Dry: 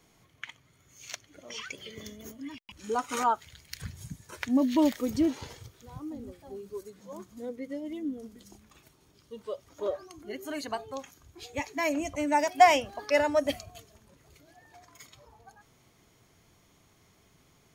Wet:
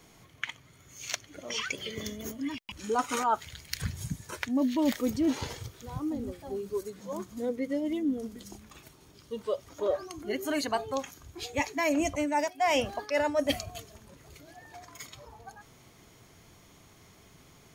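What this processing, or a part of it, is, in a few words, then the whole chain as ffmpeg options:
compression on the reversed sound: -af "areverse,acompressor=threshold=-30dB:ratio=12,areverse,volume=6.5dB"

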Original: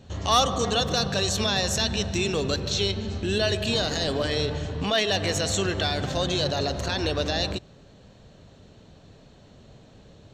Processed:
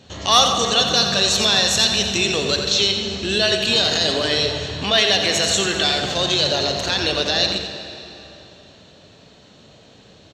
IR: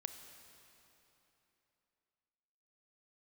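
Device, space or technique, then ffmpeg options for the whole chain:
PA in a hall: -filter_complex "[0:a]highpass=frequency=180:poles=1,equalizer=frequency=3800:width_type=o:width=2.1:gain=6.5,aecho=1:1:87:0.398[link_01];[1:a]atrim=start_sample=2205[link_02];[link_01][link_02]afir=irnorm=-1:irlink=0,volume=6.5dB"

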